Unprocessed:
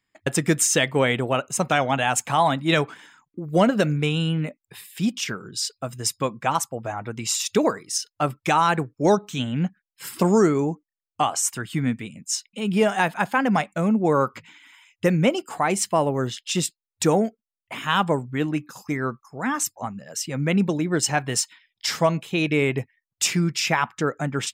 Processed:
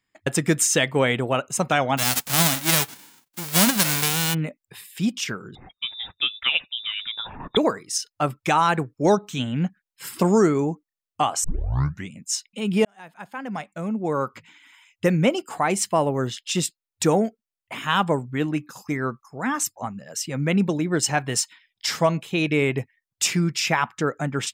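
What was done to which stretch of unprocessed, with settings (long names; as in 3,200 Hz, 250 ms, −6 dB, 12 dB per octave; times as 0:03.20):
0:01.97–0:04.33: spectral envelope flattened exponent 0.1
0:05.55–0:07.57: voice inversion scrambler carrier 3,700 Hz
0:11.44: tape start 0.68 s
0:12.85–0:15.07: fade in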